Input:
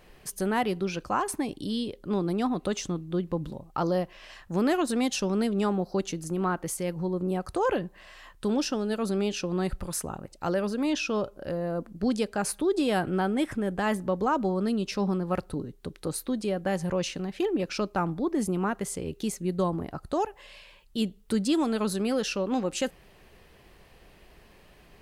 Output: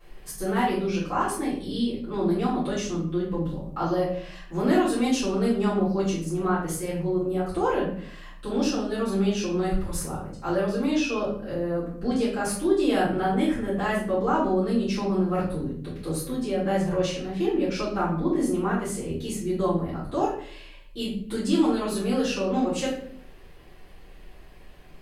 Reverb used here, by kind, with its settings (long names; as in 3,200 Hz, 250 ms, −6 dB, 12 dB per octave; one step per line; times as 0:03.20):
rectangular room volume 83 cubic metres, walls mixed, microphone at 3.2 metres
level −11 dB